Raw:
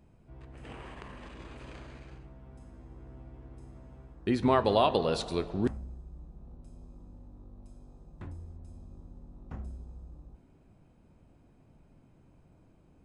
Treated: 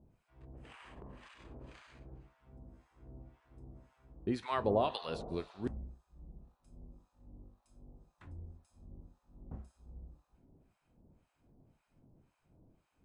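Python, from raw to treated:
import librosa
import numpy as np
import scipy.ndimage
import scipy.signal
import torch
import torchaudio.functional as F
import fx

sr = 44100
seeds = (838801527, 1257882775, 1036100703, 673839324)

y = fx.harmonic_tremolo(x, sr, hz=1.9, depth_pct=100, crossover_hz=900.0)
y = y * librosa.db_to_amplitude(-2.5)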